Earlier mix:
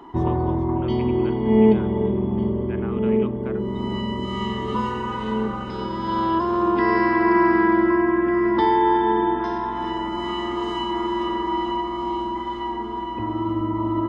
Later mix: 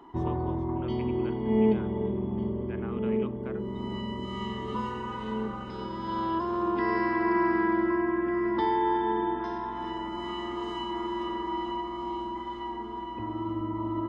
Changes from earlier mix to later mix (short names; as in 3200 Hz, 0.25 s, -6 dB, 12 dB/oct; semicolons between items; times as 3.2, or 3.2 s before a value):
speech -5.5 dB; background -8.0 dB